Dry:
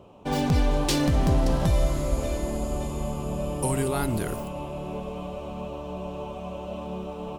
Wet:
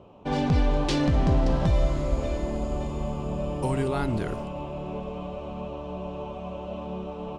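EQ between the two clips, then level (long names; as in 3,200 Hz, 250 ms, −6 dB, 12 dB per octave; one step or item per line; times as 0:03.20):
high-frequency loss of the air 110 metres
0.0 dB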